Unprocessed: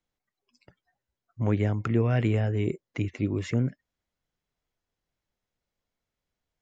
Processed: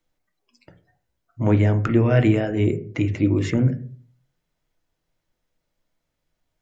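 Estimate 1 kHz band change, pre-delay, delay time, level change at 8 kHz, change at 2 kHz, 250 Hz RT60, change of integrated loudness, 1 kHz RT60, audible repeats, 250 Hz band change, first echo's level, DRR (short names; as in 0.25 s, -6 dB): +6.0 dB, 3 ms, none, n/a, +7.0 dB, 0.55 s, +7.0 dB, 0.35 s, none, +8.5 dB, none, 6.0 dB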